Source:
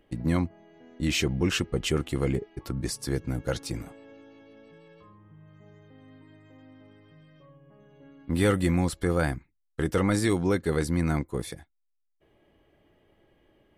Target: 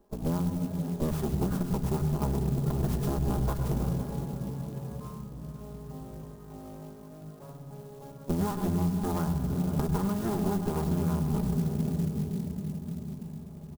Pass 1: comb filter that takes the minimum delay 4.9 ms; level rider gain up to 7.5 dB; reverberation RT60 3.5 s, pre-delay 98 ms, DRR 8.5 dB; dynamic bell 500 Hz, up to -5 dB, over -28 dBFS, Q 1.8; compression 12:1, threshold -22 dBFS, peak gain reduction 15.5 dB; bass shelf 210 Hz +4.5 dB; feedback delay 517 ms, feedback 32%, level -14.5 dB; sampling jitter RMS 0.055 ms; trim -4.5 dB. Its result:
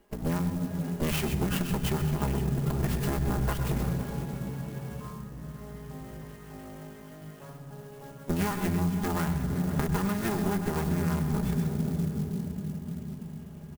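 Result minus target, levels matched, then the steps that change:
2 kHz band +9.5 dB
add after compression: Butterworth band-stop 2.7 kHz, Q 0.55

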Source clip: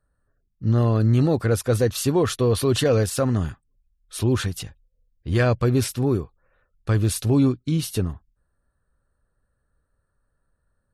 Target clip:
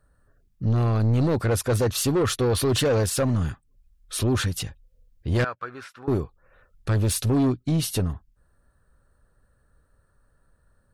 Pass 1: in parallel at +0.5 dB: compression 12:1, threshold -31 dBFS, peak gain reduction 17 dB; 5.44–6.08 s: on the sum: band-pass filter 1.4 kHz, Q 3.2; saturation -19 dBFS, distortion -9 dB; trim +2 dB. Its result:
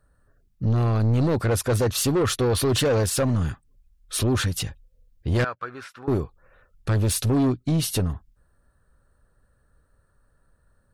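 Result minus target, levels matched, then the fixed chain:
compression: peak gain reduction -10.5 dB
in parallel at +0.5 dB: compression 12:1, threshold -42.5 dBFS, peak gain reduction 27.5 dB; 5.44–6.08 s: on the sum: band-pass filter 1.4 kHz, Q 3.2; saturation -19 dBFS, distortion -10 dB; trim +2 dB

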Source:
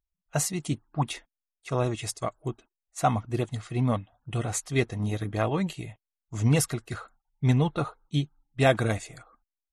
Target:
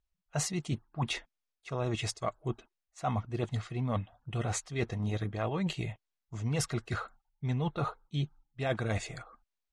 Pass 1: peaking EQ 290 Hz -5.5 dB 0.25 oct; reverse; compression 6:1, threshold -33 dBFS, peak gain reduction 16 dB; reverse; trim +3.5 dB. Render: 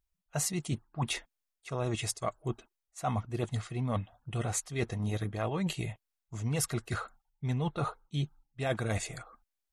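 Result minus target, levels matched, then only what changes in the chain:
8 kHz band +3.0 dB
add first: low-pass 5.8 kHz 12 dB/octave

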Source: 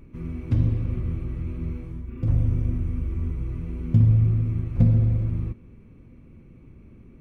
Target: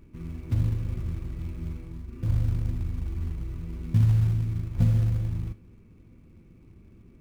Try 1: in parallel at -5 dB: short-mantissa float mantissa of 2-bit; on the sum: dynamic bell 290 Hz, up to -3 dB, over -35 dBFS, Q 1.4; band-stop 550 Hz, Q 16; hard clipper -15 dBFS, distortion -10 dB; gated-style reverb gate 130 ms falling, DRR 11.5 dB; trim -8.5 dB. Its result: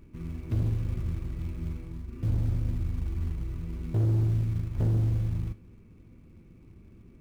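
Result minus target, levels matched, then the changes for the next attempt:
hard clipper: distortion +30 dB
change: hard clipper -4.5 dBFS, distortion -40 dB

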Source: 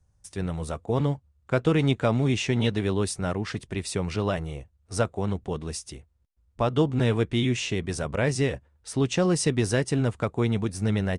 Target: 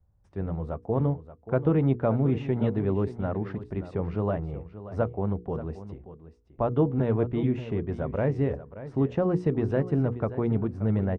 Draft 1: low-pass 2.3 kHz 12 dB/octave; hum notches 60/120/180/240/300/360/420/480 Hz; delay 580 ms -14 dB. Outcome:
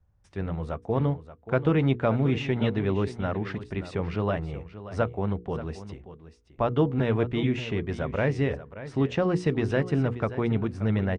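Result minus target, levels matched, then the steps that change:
2 kHz band +8.5 dB
change: low-pass 1 kHz 12 dB/octave

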